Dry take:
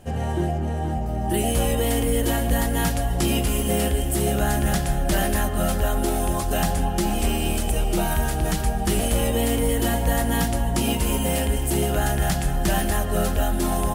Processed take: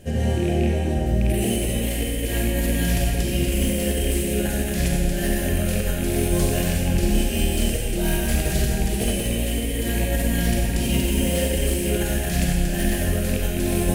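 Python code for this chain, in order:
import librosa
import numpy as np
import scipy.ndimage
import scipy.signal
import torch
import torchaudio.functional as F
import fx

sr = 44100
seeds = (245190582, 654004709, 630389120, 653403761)

y = fx.rattle_buzz(x, sr, strikes_db=-20.0, level_db=-24.0)
y = fx.band_shelf(y, sr, hz=1000.0, db=-12.0, octaves=1.1)
y = fx.over_compress(y, sr, threshold_db=-24.0, ratio=-0.5)
y = fx.rev_schroeder(y, sr, rt60_s=1.7, comb_ms=31, drr_db=-1.5)
y = fx.slew_limit(y, sr, full_power_hz=390.0)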